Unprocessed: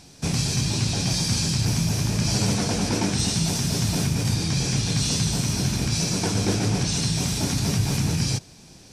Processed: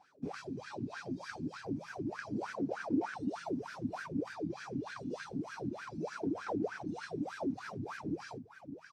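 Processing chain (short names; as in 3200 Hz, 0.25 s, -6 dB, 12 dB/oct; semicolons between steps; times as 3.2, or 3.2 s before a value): echo 0.642 s -11 dB; wah 3.3 Hz 260–1600 Hz, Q 10; reverb removal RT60 0.97 s; gain +4.5 dB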